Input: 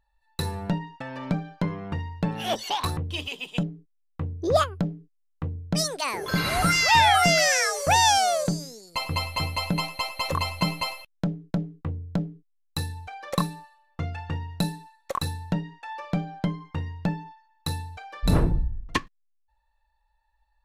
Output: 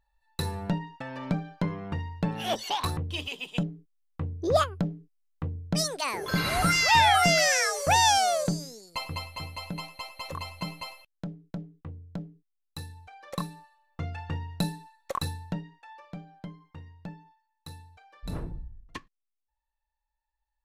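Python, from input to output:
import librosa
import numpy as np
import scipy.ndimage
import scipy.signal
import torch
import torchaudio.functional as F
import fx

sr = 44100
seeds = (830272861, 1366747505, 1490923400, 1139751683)

y = fx.gain(x, sr, db=fx.line((8.82, -2.0), (9.31, -10.0), (13.09, -10.0), (14.21, -2.5), (15.23, -2.5), (16.14, -14.5)))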